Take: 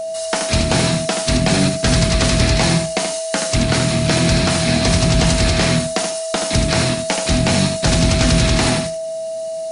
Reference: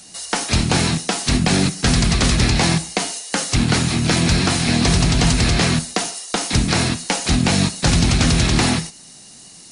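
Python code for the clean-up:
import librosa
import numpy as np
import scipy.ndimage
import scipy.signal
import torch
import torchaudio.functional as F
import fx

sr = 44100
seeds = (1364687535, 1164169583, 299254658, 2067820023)

y = fx.notch(x, sr, hz=650.0, q=30.0)
y = fx.fix_echo_inverse(y, sr, delay_ms=78, level_db=-6.5)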